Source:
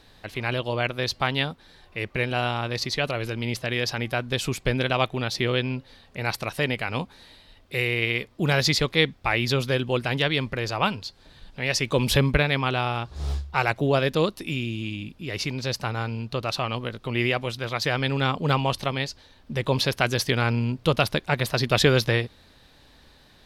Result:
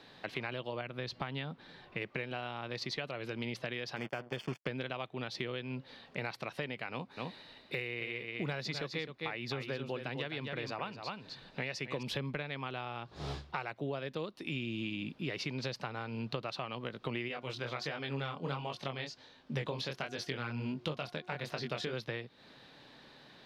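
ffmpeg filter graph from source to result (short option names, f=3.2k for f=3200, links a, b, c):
-filter_complex "[0:a]asettb=1/sr,asplit=3[a][b][c];[a]atrim=end=0.814[d];[b]atrim=start=0.81:end=2.02,asetpts=PTS-STARTPTS,afade=t=in:d=0.004:c=qsin,afade=t=out:st=1.206:d=0.004:c=qsin,bass=f=250:g=5,treble=f=4k:g=-4,acompressor=threshold=-33dB:ratio=1.5:attack=3.2:release=140:knee=1:detection=peak[e];[c]atrim=start=2.016[f];[d][e]acrossfade=d=0.004:c1=hsin:c2=qsin[g];[g][f]acrossfade=d=0.004:c1=qsin:c2=hsin,asettb=1/sr,asplit=3[h][i][j];[h]atrim=end=3.964[k];[i]atrim=start=3.96:end=4.67,asetpts=PTS-STARTPTS,afade=t=in:d=0.004:c=qsin,afade=t=out:st=0.706:d=0.004:c=qsin,aemphasis=mode=reproduction:type=50fm,acrusher=bits=4:mix=0:aa=0.5,asuperstop=centerf=3900:order=8:qfactor=6[l];[j]atrim=start=4.666[m];[k][l]acrossfade=d=0.004:c1=hsin:c2=qsin[n];[n][m]acrossfade=d=0.004:c1=qsin:c2=hsin,asettb=1/sr,asplit=3[o][p][q];[o]atrim=end=6.914[r];[p]atrim=start=6.91:end=12.03,asetpts=PTS-STARTPTS,afade=t=in:d=0.004:c=qsin,afade=t=out:st=5.116:d=0.004:c=qsin,bandreject=f=3.2k:w=14,aecho=1:1:258:0.398,atrim=end_sample=225792[s];[q]atrim=start=12.026[t];[r][s]acrossfade=d=0.004:c1=hsin:c2=qsin[u];[u][t]acrossfade=d=0.004:c1=qsin:c2=hsin,asettb=1/sr,asplit=3[v][w][x];[v]atrim=end=17.284[y];[w]atrim=start=17.28:end=21.93,asetpts=PTS-STARTPTS,afade=t=in:d=0.004:c=qsin,afade=t=out:st=4.646:d=0.004:c=qsin,equalizer=f=6.6k:t=o:w=0.82:g=4,bandreject=f=360.4:t=h:w=4,bandreject=f=720.8:t=h:w=4,bandreject=f=1.0812k:t=h:w=4,bandreject=f=1.4416k:t=h:w=4,flanger=delay=19.5:depth=5.5:speed=1.4[z];[x]atrim=start=21.926[aa];[y][z]acrossfade=d=0.004:c1=hsin:c2=qsin[ab];[ab][aa]acrossfade=d=0.004:c1=qsin:c2=hsin,acrossover=split=190 5100:gain=0.0794 1 0.178[ac][ad][ae];[ac][ad][ae]amix=inputs=3:normalize=0,acompressor=threshold=-35dB:ratio=16,equalizer=f=130:t=o:w=0.83:g=10"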